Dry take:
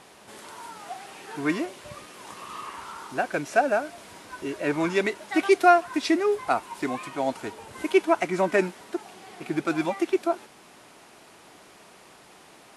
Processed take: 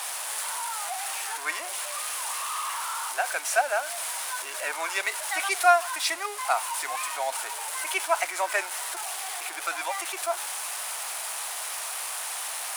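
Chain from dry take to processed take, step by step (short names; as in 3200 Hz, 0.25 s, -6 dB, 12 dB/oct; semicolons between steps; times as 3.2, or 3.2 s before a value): zero-crossing step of -31 dBFS; HPF 720 Hz 24 dB/oct; bell 9700 Hz +11 dB 0.74 oct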